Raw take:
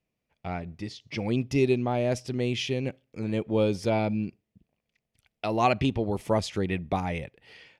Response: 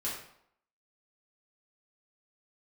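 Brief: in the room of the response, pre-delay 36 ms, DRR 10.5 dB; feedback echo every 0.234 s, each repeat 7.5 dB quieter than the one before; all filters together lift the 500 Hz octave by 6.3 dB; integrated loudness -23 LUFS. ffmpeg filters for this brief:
-filter_complex "[0:a]equalizer=f=500:t=o:g=8,aecho=1:1:234|468|702|936|1170:0.422|0.177|0.0744|0.0312|0.0131,asplit=2[a][b];[1:a]atrim=start_sample=2205,adelay=36[c];[b][c]afir=irnorm=-1:irlink=0,volume=-14dB[d];[a][d]amix=inputs=2:normalize=0"

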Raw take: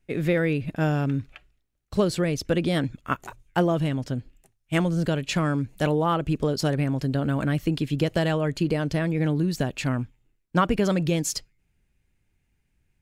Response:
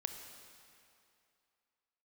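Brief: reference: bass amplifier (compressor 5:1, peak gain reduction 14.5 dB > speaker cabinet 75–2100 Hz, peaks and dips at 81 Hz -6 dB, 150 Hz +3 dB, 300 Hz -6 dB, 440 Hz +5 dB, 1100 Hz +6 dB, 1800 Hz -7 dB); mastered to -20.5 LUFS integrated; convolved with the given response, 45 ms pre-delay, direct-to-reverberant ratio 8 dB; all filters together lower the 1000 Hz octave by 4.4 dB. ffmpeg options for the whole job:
-filter_complex "[0:a]equalizer=f=1k:t=o:g=-9,asplit=2[a][b];[1:a]atrim=start_sample=2205,adelay=45[c];[b][c]afir=irnorm=-1:irlink=0,volume=-7.5dB[d];[a][d]amix=inputs=2:normalize=0,acompressor=threshold=-33dB:ratio=5,highpass=f=75:w=0.5412,highpass=f=75:w=1.3066,equalizer=f=81:t=q:w=4:g=-6,equalizer=f=150:t=q:w=4:g=3,equalizer=f=300:t=q:w=4:g=-6,equalizer=f=440:t=q:w=4:g=5,equalizer=f=1.1k:t=q:w=4:g=6,equalizer=f=1.8k:t=q:w=4:g=-7,lowpass=f=2.1k:w=0.5412,lowpass=f=2.1k:w=1.3066,volume=16dB"

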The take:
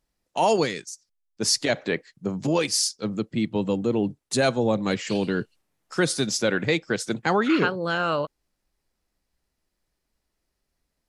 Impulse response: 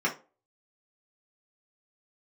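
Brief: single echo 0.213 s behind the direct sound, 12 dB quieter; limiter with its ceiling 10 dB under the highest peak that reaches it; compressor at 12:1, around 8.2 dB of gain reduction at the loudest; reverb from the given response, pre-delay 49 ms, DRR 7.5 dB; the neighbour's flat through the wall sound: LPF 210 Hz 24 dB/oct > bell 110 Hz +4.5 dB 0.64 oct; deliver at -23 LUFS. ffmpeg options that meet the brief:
-filter_complex "[0:a]acompressor=threshold=-25dB:ratio=12,alimiter=limit=-22.5dB:level=0:latency=1,aecho=1:1:213:0.251,asplit=2[a][b];[1:a]atrim=start_sample=2205,adelay=49[c];[b][c]afir=irnorm=-1:irlink=0,volume=-18dB[d];[a][d]amix=inputs=2:normalize=0,lowpass=f=210:w=0.5412,lowpass=f=210:w=1.3066,equalizer=f=110:t=o:w=0.64:g=4.5,volume=16.5dB"

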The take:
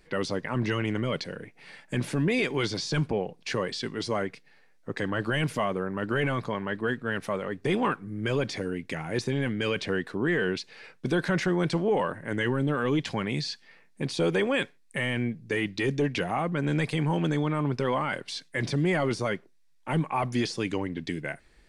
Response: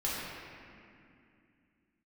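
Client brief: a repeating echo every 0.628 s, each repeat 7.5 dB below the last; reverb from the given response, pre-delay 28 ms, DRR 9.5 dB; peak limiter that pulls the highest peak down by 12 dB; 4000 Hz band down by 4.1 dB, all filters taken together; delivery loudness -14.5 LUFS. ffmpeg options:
-filter_complex "[0:a]equalizer=f=4k:t=o:g=-5.5,alimiter=level_in=4dB:limit=-24dB:level=0:latency=1,volume=-4dB,aecho=1:1:628|1256|1884|2512|3140:0.422|0.177|0.0744|0.0312|0.0131,asplit=2[a][b];[1:a]atrim=start_sample=2205,adelay=28[c];[b][c]afir=irnorm=-1:irlink=0,volume=-16.5dB[d];[a][d]amix=inputs=2:normalize=0,volume=22dB"

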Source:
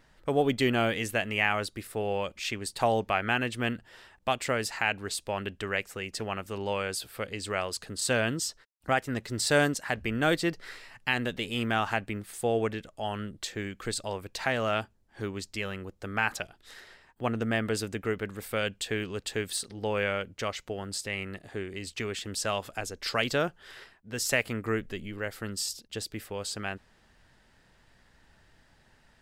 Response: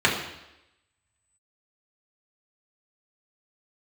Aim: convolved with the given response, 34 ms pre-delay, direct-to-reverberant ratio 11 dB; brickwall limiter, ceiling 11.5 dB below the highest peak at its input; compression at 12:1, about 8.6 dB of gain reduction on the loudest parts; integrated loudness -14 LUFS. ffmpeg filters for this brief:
-filter_complex "[0:a]acompressor=threshold=-28dB:ratio=12,alimiter=limit=-24dB:level=0:latency=1,asplit=2[a][b];[1:a]atrim=start_sample=2205,adelay=34[c];[b][c]afir=irnorm=-1:irlink=0,volume=-29.5dB[d];[a][d]amix=inputs=2:normalize=0,volume=22dB"

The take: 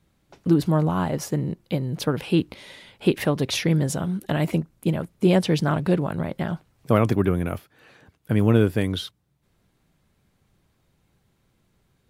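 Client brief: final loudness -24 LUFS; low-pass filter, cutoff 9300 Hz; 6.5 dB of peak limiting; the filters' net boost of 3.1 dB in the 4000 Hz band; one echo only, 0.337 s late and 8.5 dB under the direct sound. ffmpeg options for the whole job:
-af "lowpass=9.3k,equalizer=f=4k:t=o:g=4,alimiter=limit=-10.5dB:level=0:latency=1,aecho=1:1:337:0.376"

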